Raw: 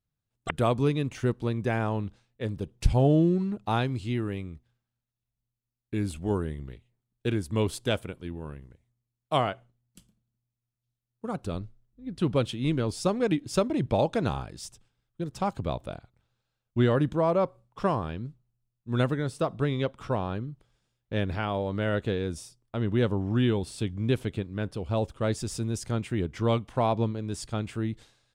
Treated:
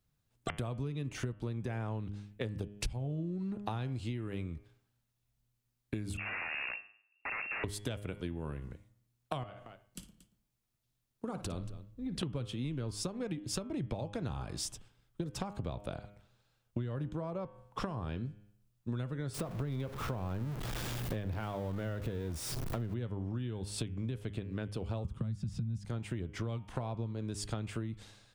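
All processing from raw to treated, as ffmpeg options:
-filter_complex "[0:a]asettb=1/sr,asplit=3[s0][s1][s2];[s0]atrim=end=6.174[s3];[s1]atrim=start=6.17:end=7.64,asetpts=PTS-STARTPTS,afade=t=in:d=0.004:c=qsin,afade=t=out:st=1.466:d=0.004:c=qsin,acompressor=threshold=0.0224:ratio=8:attack=3.2:release=140:knee=1:detection=peak,aeval=exprs='(mod(63.1*val(0)+1,2)-1)/63.1':c=same,lowpass=f=2400:t=q:w=0.5098,lowpass=f=2400:t=q:w=0.6013,lowpass=f=2400:t=q:w=0.9,lowpass=f=2400:t=q:w=2.563,afreqshift=-2800[s4];[s2]atrim=start=7.636[s5];[s3][s4]acrossfade=d=0.004:c1=hsin:c2=qsin[s6];[s6][s5]acrossfade=d=0.004:c1=qsin:c2=hsin,asettb=1/sr,asplit=3[s7][s8][s9];[s7]atrim=end=9.434[s10];[s8]atrim=start=9.43:end=12.23,asetpts=PTS-STARTPTS,afade=t=in:d=0.004:c=qsin,afade=t=out:st=2.796:d=0.004:c=qsin,bandreject=f=60:t=h:w=6,bandreject=f=120:t=h:w=6,acompressor=threshold=0.0126:ratio=10:attack=3.2:release=140:knee=1:detection=peak,aecho=1:1:57|231:0.224|0.158,atrim=end_sample=123480[s11];[s9]atrim=start=12.226[s12];[s10][s11]acrossfade=d=0.004:c1=hsin:c2=qsin[s13];[s13][s12]acrossfade=d=0.004:c1=qsin:c2=hsin,asettb=1/sr,asplit=3[s14][s15][s16];[s14]atrim=end=19.344[s17];[s15]atrim=start=19.34:end=22.94,asetpts=PTS-STARTPTS,afade=t=in:d=0.004:c=qsin,afade=t=out:st=3.596:d=0.004:c=qsin,aeval=exprs='val(0)+0.5*0.0224*sgn(val(0))':c=same,equalizer=f=7100:t=o:w=2.5:g=-5.5[s18];[s16]atrim=start=22.936[s19];[s17][s18]acrossfade=d=0.004:c1=hsin:c2=qsin[s20];[s20][s19]acrossfade=d=0.004:c1=qsin:c2=hsin,asettb=1/sr,asplit=3[s21][s22][s23];[s21]atrim=end=25.044[s24];[s22]atrim=start=25.04:end=25.85,asetpts=PTS-STARTPTS,afade=t=in:d=0.004:c=qsin,afade=t=out:st=0.806:d=0.004:c=qsin,lowshelf=f=270:t=q:w=3:g=12.5,acrossover=split=140|290|5200[s25][s26][s27][s28];[s25]acompressor=threshold=0.0562:ratio=3[s29];[s26]acompressor=threshold=0.0355:ratio=3[s30];[s27]acompressor=threshold=0.0224:ratio=3[s31];[s28]acompressor=threshold=0.00178:ratio=3[s32];[s29][s30][s31][s32]amix=inputs=4:normalize=0,highpass=46[s33];[s23]atrim=start=25.846[s34];[s24][s33]acrossfade=d=0.004:c1=hsin:c2=qsin[s35];[s35][s34]acrossfade=d=0.004:c1=qsin:c2=hsin,acrossover=split=150[s36][s37];[s37]acompressor=threshold=0.0251:ratio=6[s38];[s36][s38]amix=inputs=2:normalize=0,bandreject=f=102.3:t=h:w=4,bandreject=f=204.6:t=h:w=4,bandreject=f=306.9:t=h:w=4,bandreject=f=409.2:t=h:w=4,bandreject=f=511.5:t=h:w=4,bandreject=f=613.8:t=h:w=4,bandreject=f=716.1:t=h:w=4,bandreject=f=818.4:t=h:w=4,bandreject=f=920.7:t=h:w=4,bandreject=f=1023:t=h:w=4,bandreject=f=1125.3:t=h:w=4,bandreject=f=1227.6:t=h:w=4,bandreject=f=1329.9:t=h:w=4,bandreject=f=1432.2:t=h:w=4,bandreject=f=1534.5:t=h:w=4,bandreject=f=1636.8:t=h:w=4,bandreject=f=1739.1:t=h:w=4,bandreject=f=1841.4:t=h:w=4,bandreject=f=1943.7:t=h:w=4,bandreject=f=2046:t=h:w=4,bandreject=f=2148.3:t=h:w=4,bandreject=f=2250.6:t=h:w=4,bandreject=f=2352.9:t=h:w=4,bandreject=f=2455.2:t=h:w=4,bandreject=f=2557.5:t=h:w=4,bandreject=f=2659.8:t=h:w=4,bandreject=f=2762.1:t=h:w=4,bandreject=f=2864.4:t=h:w=4,bandreject=f=2966.7:t=h:w=4,bandreject=f=3069:t=h:w=4,bandreject=f=3171.3:t=h:w=4,bandreject=f=3273.6:t=h:w=4,bandreject=f=3375.9:t=h:w=4,acompressor=threshold=0.00891:ratio=10,volume=2.24"

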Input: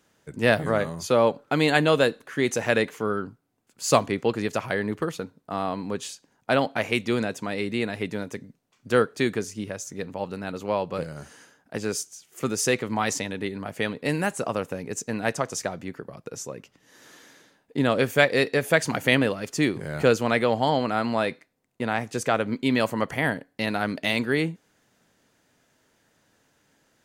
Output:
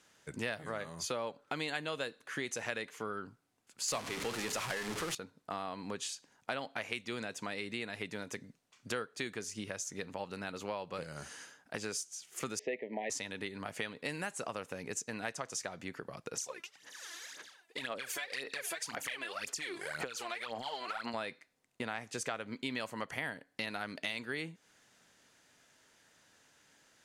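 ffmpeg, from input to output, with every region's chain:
-filter_complex "[0:a]asettb=1/sr,asplit=3[s0][s1][s2];[s0]atrim=end=3.884[s3];[s1]atrim=start=3.88:end=5.15,asetpts=PTS-STARTPTS,afade=t=in:d=0.004:c=qsin,afade=t=out:st=1.266:d=0.004:c=qsin,aeval=exprs='val(0)+0.5*0.0891*sgn(val(0))':c=same,bandreject=f=50:t=h:w=6,bandreject=f=100:t=h:w=6,bandreject=f=150:t=h:w=6,bandreject=f=200:t=h:w=6,bandreject=f=250:t=h:w=6,bandreject=f=300:t=h:w=6,bandreject=f=350:t=h:w=6,bandreject=f=400:t=h:w=6[s4];[s2]atrim=start=5.146[s5];[s3][s4]acrossfade=d=0.004:c1=hsin:c2=qsin[s6];[s6][s5]acrossfade=d=0.004:c1=qsin:c2=hsin,asettb=1/sr,asplit=3[s7][s8][s9];[s7]atrim=end=12.594[s10];[s8]atrim=start=12.59:end=13.1,asetpts=PTS-STARTPTS,afade=t=in:d=0.004:c=qsin,afade=t=out:st=0.506:d=0.004:c=qsin,asuperstop=centerf=1300:order=12:qfactor=1.5,highpass=f=190:w=0.5412,highpass=f=190:w=1.3066,equalizer=f=420:t=q:w=4:g=7,equalizer=f=610:t=q:w=4:g=10,equalizer=f=890:t=q:w=4:g=-8,equalizer=f=1400:t=q:w=4:g=8,lowpass=f=2400:w=0.5412,lowpass=f=2400:w=1.3066[s11];[s9]atrim=start=13.096[s12];[s10][s11]acrossfade=d=0.004:c1=hsin:c2=qsin[s13];[s13][s12]acrossfade=d=0.004:c1=qsin:c2=hsin,asettb=1/sr,asplit=3[s14][s15][s16];[s14]atrim=end=16.354[s17];[s15]atrim=start=16.35:end=21.14,asetpts=PTS-STARTPTS,afade=t=in:d=0.004:c=qsin,afade=t=out:st=4.786:d=0.004:c=qsin,highpass=f=790:p=1,acompressor=threshold=0.0251:ratio=6:attack=3.2:release=140:knee=1:detection=peak,aphaser=in_gain=1:out_gain=1:delay=3:decay=0.75:speed=1.9:type=sinusoidal[s18];[s16]atrim=start=21.136[s19];[s17][s18]acrossfade=d=0.004:c1=hsin:c2=qsin[s20];[s20][s19]acrossfade=d=0.004:c1=qsin:c2=hsin,lowpass=11000,tiltshelf=f=850:g=-5,acompressor=threshold=0.0178:ratio=4,volume=0.794"

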